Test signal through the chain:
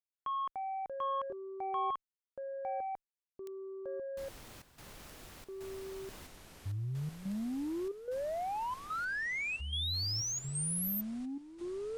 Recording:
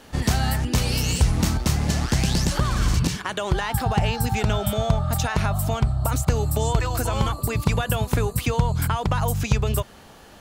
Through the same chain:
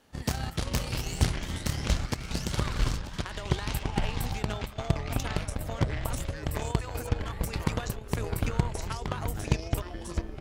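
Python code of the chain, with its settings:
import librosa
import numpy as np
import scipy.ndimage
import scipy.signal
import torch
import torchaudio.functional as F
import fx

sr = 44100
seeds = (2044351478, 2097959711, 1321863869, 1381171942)

y = fx.cheby_harmonics(x, sr, harmonics=(3,), levels_db=(-12,), full_scale_db=-7.5)
y = fx.step_gate(y, sr, bpm=182, pattern='xxxxxx..xx', floor_db=-12.0, edge_ms=4.5)
y = fx.echo_pitch(y, sr, ms=186, semitones=-6, count=3, db_per_echo=-3.0)
y = y * librosa.db_to_amplitude(-3.5)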